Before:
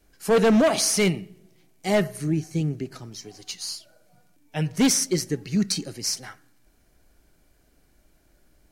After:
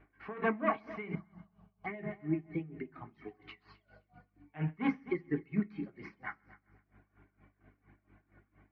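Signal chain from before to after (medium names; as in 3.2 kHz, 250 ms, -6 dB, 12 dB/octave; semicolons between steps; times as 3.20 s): reverb removal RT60 1.1 s; compression 1.5:1, threshold -51 dBFS, peak gain reduction 12 dB; cabinet simulation 180–2300 Hz, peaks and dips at 510 Hz -8 dB, 1.1 kHz +8 dB, 2.1 kHz +8 dB; hum 50 Hz, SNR 29 dB; distance through air 160 m; multi-head delay 130 ms, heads first and second, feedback 46%, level -19 dB; on a send at -5 dB: reverberation RT60 0.50 s, pre-delay 3 ms; 1.15–2.03 s: on the sum: touch-sensitive phaser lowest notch 340 Hz, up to 1.3 kHz, full sweep at -28 dBFS; logarithmic tremolo 4.3 Hz, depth 19 dB; trim +5 dB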